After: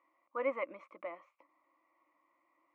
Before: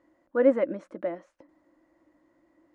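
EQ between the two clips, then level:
pair of resonant band-passes 1,600 Hz, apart 1 octave
+6.0 dB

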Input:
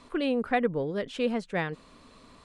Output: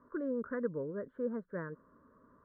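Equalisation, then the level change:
high-pass filter 96 Hz 6 dB per octave
Butterworth band-reject 770 Hz, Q 2.3
elliptic low-pass filter 1,600 Hz, stop band 40 dB
−7.0 dB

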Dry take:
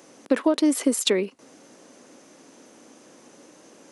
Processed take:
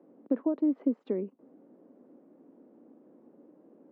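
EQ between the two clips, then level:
dynamic equaliser 390 Hz, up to −4 dB, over −32 dBFS, Q 1.3
four-pole ladder band-pass 300 Hz, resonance 20%
high-frequency loss of the air 170 metres
+7.0 dB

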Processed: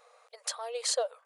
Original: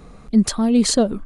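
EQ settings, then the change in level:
linear-phase brick-wall high-pass 460 Hz
−9.0 dB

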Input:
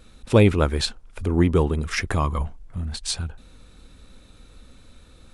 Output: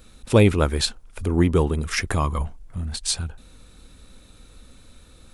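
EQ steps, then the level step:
high-shelf EQ 8,700 Hz +10.5 dB
0.0 dB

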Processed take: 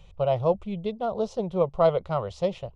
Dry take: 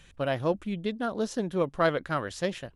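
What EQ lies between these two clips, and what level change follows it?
head-to-tape spacing loss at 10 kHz 25 dB
phaser with its sweep stopped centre 690 Hz, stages 4
+8.0 dB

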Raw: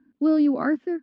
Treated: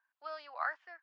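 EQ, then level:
Butterworth high-pass 800 Hz 36 dB per octave
high-shelf EQ 4,000 Hz −6 dB
−3.0 dB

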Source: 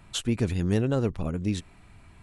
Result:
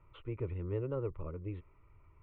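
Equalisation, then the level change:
low-pass filter 1,900 Hz 24 dB per octave
phaser with its sweep stopped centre 1,100 Hz, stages 8
−7.5 dB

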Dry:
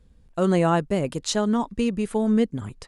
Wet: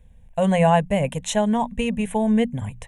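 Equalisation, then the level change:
mains-hum notches 60/120/180/240 Hz
phaser with its sweep stopped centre 1,300 Hz, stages 6
+7.0 dB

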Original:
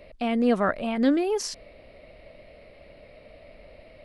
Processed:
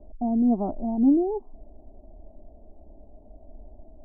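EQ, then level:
elliptic low-pass filter 840 Hz, stop band 60 dB
spectral tilt −2.5 dB per octave
phaser with its sweep stopped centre 510 Hz, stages 6
−1.0 dB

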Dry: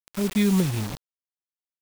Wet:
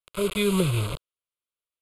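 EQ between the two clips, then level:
Butterworth low-pass 12,000 Hz 48 dB per octave
phaser with its sweep stopped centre 1,200 Hz, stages 8
+6.0 dB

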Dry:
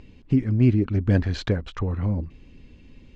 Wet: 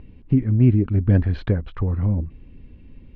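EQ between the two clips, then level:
high-frequency loss of the air 350 metres
low-shelf EQ 190 Hz +5.5 dB
0.0 dB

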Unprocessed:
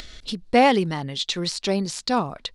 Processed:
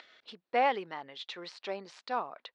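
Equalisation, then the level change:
high-pass filter 580 Hz 12 dB per octave
low-pass filter 2,300 Hz 12 dB per octave
−7.5 dB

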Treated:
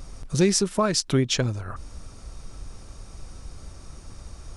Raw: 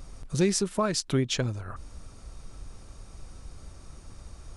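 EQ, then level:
parametric band 5,500 Hz +3 dB 0.34 octaves
+4.0 dB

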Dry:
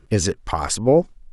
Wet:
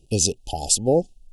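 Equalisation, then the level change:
linear-phase brick-wall band-stop 870–2,500 Hz
high-shelf EQ 3,300 Hz +11.5 dB
−4.0 dB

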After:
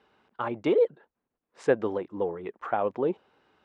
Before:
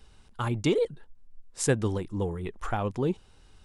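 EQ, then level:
dynamic equaliser 580 Hz, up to +6 dB, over −43 dBFS, Q 1.9
band-pass filter 310–2,000 Hz
+1.5 dB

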